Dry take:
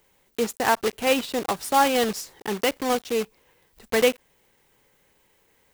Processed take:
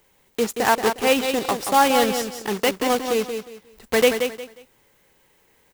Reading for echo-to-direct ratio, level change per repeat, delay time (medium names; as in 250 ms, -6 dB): -6.5 dB, -11.5 dB, 179 ms